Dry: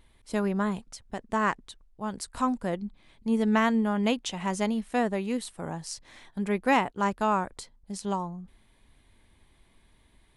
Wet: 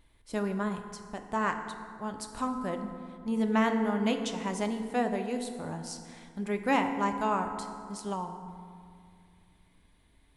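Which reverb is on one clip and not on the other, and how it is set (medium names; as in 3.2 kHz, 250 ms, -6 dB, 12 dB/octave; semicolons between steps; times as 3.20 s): FDN reverb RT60 2.3 s, low-frequency decay 1.25×, high-frequency decay 0.5×, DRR 5.5 dB; trim -4 dB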